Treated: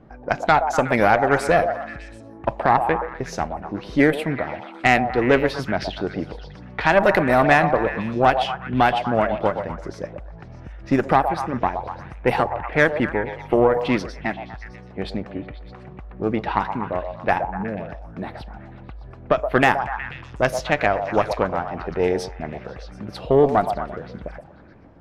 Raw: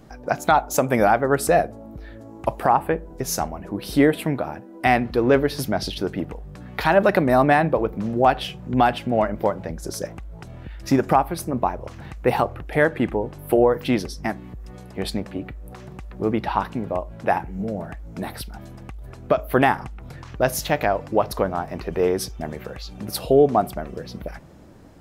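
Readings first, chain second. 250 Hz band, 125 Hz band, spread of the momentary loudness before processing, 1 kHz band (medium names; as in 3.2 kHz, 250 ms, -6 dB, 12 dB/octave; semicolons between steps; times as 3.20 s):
-0.5 dB, 0.0 dB, 19 LU, +1.5 dB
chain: level-controlled noise filter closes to 1.9 kHz, open at -12.5 dBFS; dynamic bell 2 kHz, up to +5 dB, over -35 dBFS, Q 1.2; Chebyshev shaper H 4 -19 dB, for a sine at -2 dBFS; repeats whose band climbs or falls 122 ms, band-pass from 680 Hz, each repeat 0.7 oct, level -5.5 dB; trim -1 dB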